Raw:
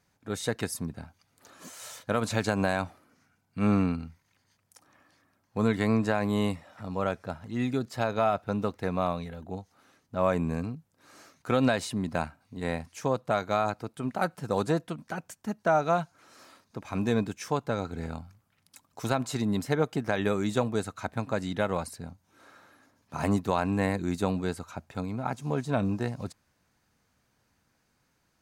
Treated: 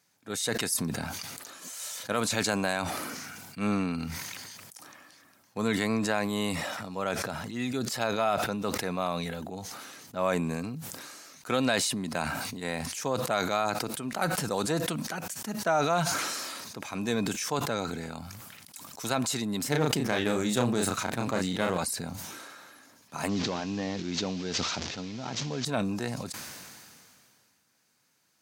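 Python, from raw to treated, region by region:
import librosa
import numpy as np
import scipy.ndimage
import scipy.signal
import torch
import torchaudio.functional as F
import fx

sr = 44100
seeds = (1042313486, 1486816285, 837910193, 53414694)

y = fx.chain(x, sr, fx.halfwave_gain(db=-7.0),
    fx.low_shelf(hz=440.0, db=5.5),
    fx.doubler(ms=33.0, db=-5.5), at=(19.61, 21.78))
y = fx.chain(y, sr, fx.delta_mod(bps=32000, step_db=-40.0),
    fx.peak_eq(hz=1200.0, db=-5.5, octaves=2.1),
    fx.sustainer(db_per_s=35.0), at=(23.29, 25.65))
y = scipy.signal.sosfilt(scipy.signal.butter(2, 140.0, 'highpass', fs=sr, output='sos'), y)
y = fx.high_shelf(y, sr, hz=2400.0, db=11.0)
y = fx.sustainer(y, sr, db_per_s=25.0)
y = y * 10.0 ** (-3.5 / 20.0)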